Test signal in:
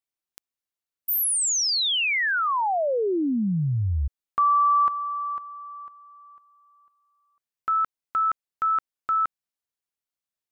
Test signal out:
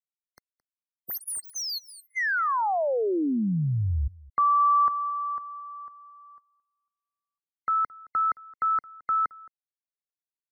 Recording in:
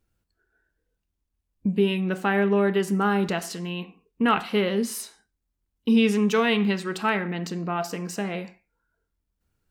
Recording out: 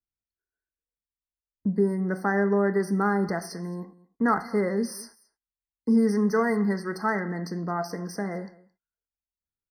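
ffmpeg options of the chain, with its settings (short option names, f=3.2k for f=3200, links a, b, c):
-filter_complex "[0:a]acrossover=split=280|2000[a][b][c];[c]asoftclip=type=tanh:threshold=-29dB[d];[a][b][d]amix=inputs=3:normalize=0,agate=range=-23dB:threshold=-53dB:ratio=3:release=35:detection=rms,aecho=1:1:219:0.075,afftfilt=real='re*eq(mod(floor(b*sr/1024/2100),2),0)':imag='im*eq(mod(floor(b*sr/1024/2100),2),0)':win_size=1024:overlap=0.75,volume=-1.5dB"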